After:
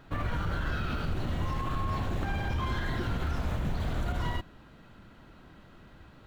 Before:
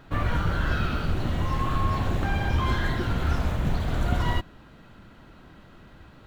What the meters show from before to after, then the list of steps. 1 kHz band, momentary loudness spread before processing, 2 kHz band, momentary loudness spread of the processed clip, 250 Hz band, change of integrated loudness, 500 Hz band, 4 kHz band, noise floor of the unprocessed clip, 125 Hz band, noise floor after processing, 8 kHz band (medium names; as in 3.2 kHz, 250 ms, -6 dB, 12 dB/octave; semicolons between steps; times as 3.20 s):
-6.0 dB, 3 LU, -6.0 dB, 2 LU, -5.5 dB, -6.0 dB, -5.5 dB, -5.5 dB, -51 dBFS, -6.0 dB, -54 dBFS, no reading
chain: peak limiter -19 dBFS, peak gain reduction 9 dB; trim -3.5 dB